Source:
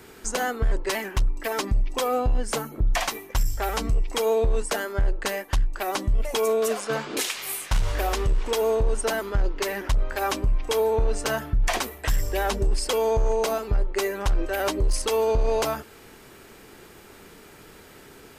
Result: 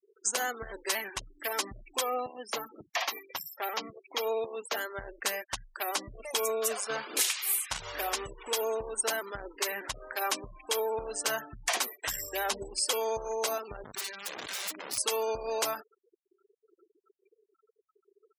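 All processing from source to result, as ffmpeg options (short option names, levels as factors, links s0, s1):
-filter_complex "[0:a]asettb=1/sr,asplit=3[s0][s1][s2];[s0]atrim=end=2.014[s3];[s1]atrim=start=2.01:end=4.77,asetpts=PTS-STARTPTS,afade=t=in:d=0.004:c=qsin,afade=t=out:st=2.756:d=0.004:c=qsin,highpass=160,equalizer=f=8400:t=o:w=0.69:g=-14,bandreject=f=1500:w=13[s4];[s2]atrim=start=4.766[s5];[s3][s4]acrossfade=d=0.004:c1=hsin:c2=qsin[s6];[s6][s5]acrossfade=d=0.004:c1=qsin:c2=hsin,asettb=1/sr,asplit=3[s7][s8][s9];[s7]atrim=end=13.844[s10];[s8]atrim=start=13.84:end=14.98,asetpts=PTS-STARTPTS,afade=t=in:d=0.004:c=qsin,afade=t=out:st=1.136:d=0.004:c=qsin,lowpass=4100,equalizer=f=460:t=o:w=1.1:g=-13,aeval=exprs='(mod(25.1*val(0)+1,2)-1)/25.1':c=same[s11];[s9]atrim=start=14.976[s12];[s10][s11]acrossfade=d=0.004:c1=hsin:c2=qsin[s13];[s13][s12]acrossfade=d=0.004:c1=qsin:c2=hsin,highpass=f=700:p=1,afftfilt=real='re*gte(hypot(re,im),0.0126)':imag='im*gte(hypot(re,im),0.0126)':win_size=1024:overlap=0.75,highshelf=f=5000:g=8.5,volume=0.631"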